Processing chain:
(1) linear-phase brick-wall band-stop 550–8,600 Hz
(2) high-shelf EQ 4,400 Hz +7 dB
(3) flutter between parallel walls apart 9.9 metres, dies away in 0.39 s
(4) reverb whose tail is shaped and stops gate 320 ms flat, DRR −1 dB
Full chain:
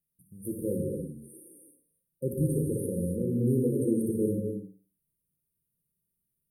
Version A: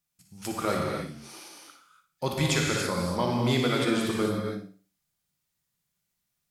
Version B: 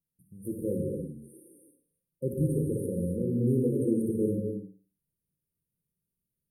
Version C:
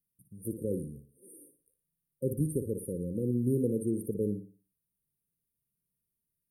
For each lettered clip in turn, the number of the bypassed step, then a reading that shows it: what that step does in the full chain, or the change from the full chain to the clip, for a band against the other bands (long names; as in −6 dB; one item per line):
1, 8 kHz band +8.0 dB
2, 8 kHz band −6.0 dB
4, echo-to-direct ratio 2.0 dB to −8.5 dB